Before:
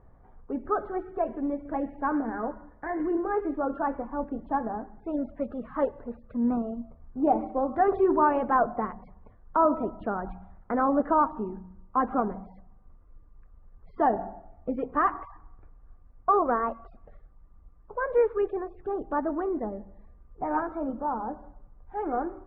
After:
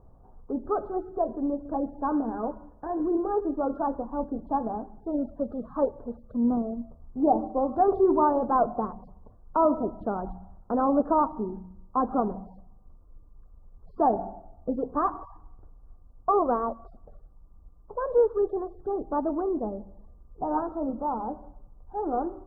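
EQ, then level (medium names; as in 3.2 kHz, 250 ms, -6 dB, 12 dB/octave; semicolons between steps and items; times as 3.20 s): Butterworth band-stop 2.3 kHz, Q 0.62; +1.5 dB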